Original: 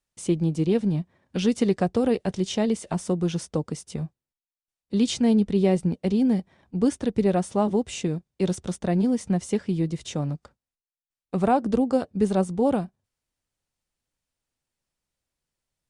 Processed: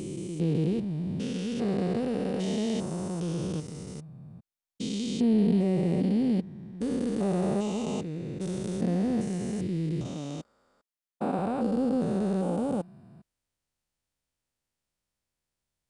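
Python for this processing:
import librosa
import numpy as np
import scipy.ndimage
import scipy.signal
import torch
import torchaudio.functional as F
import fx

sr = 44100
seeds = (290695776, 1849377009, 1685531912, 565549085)

y = fx.spec_steps(x, sr, hold_ms=400)
y = fx.low_shelf_res(y, sr, hz=160.0, db=-8.5, q=1.5, at=(10.06, 11.39))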